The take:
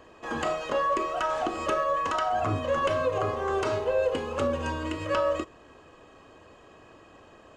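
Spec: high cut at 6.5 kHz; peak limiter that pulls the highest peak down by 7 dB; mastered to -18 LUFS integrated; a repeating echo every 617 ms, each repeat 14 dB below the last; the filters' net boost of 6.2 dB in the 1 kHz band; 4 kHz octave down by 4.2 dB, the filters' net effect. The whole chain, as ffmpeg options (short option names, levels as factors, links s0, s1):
-af "lowpass=6500,equalizer=f=1000:t=o:g=8,equalizer=f=4000:t=o:g=-7,alimiter=limit=0.119:level=0:latency=1,aecho=1:1:617|1234:0.2|0.0399,volume=2.82"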